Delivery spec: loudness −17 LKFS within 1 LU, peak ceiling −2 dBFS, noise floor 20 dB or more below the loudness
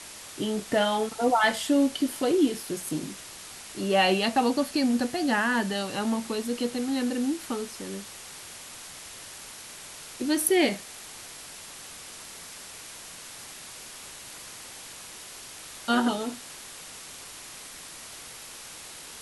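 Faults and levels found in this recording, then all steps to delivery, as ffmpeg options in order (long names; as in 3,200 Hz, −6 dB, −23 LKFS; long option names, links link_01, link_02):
background noise floor −44 dBFS; target noise floor −47 dBFS; integrated loudness −26.5 LKFS; sample peak −9.0 dBFS; target loudness −17.0 LKFS
→ -af "afftdn=noise_reduction=6:noise_floor=-44"
-af "volume=9.5dB,alimiter=limit=-2dB:level=0:latency=1"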